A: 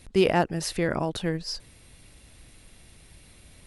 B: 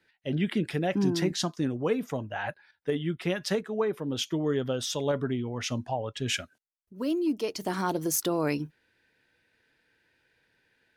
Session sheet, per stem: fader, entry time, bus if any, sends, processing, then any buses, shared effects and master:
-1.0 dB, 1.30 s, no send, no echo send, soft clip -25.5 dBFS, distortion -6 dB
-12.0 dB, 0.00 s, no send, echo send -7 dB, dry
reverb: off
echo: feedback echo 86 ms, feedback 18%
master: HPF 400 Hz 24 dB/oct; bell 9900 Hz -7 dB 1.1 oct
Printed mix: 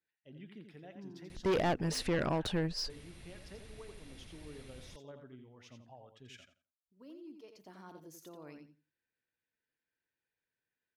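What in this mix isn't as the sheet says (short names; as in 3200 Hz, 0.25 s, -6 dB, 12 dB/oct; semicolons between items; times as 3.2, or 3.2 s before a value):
stem B -12.0 dB -> -24.0 dB; master: missing HPF 400 Hz 24 dB/oct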